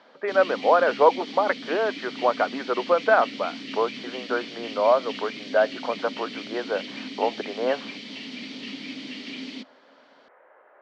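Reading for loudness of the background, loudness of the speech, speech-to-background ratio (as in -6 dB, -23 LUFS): -35.5 LUFS, -24.5 LUFS, 11.0 dB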